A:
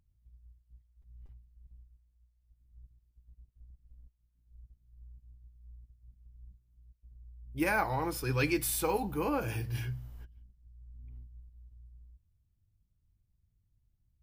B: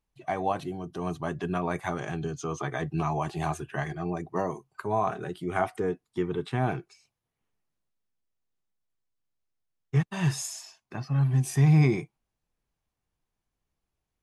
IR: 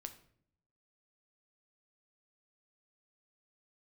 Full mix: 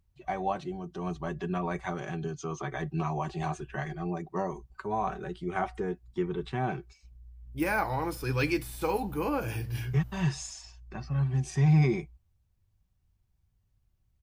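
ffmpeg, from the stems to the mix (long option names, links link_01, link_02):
-filter_complex "[0:a]deesser=0.8,volume=1.5dB[link_01];[1:a]lowpass=frequency=7400:width=0.5412,lowpass=frequency=7400:width=1.3066,aecho=1:1:5.3:0.47,volume=-4dB[link_02];[link_01][link_02]amix=inputs=2:normalize=0"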